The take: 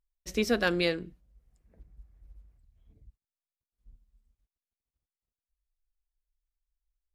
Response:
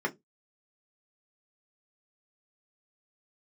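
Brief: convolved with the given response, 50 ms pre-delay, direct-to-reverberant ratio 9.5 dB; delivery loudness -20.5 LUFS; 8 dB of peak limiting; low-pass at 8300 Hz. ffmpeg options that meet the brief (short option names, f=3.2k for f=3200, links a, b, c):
-filter_complex "[0:a]lowpass=8.3k,alimiter=limit=-20.5dB:level=0:latency=1,asplit=2[a][b];[1:a]atrim=start_sample=2205,adelay=50[c];[b][c]afir=irnorm=-1:irlink=0,volume=-17.5dB[d];[a][d]amix=inputs=2:normalize=0,volume=12dB"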